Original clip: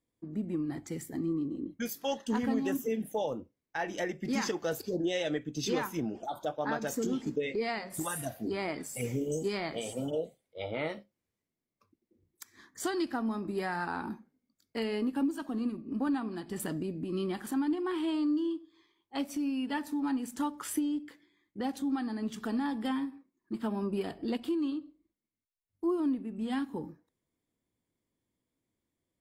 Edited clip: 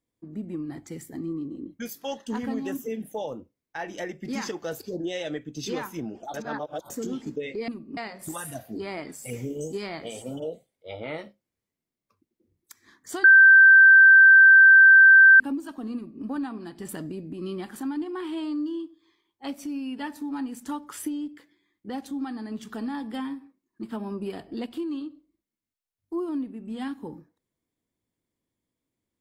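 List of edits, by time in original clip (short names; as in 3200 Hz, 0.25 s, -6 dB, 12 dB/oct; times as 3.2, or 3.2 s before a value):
6.34–6.9 reverse
12.95–15.11 bleep 1560 Hz -9 dBFS
15.66–15.95 copy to 7.68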